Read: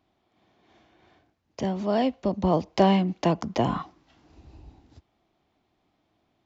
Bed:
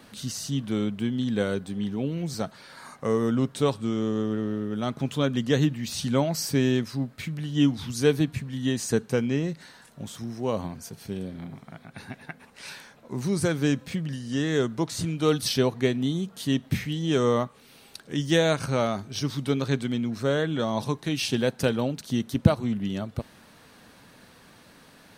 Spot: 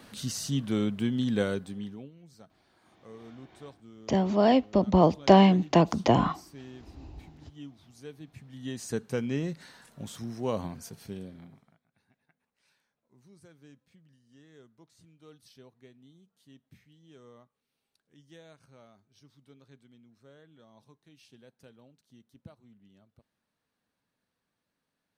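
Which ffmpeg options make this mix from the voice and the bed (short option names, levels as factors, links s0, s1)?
-filter_complex "[0:a]adelay=2500,volume=1.33[s0];[1:a]volume=9.44,afade=t=out:st=1.36:d=0.75:silence=0.0749894,afade=t=in:st=8.21:d=1.41:silence=0.0944061,afade=t=out:st=10.78:d=1.02:silence=0.0398107[s1];[s0][s1]amix=inputs=2:normalize=0"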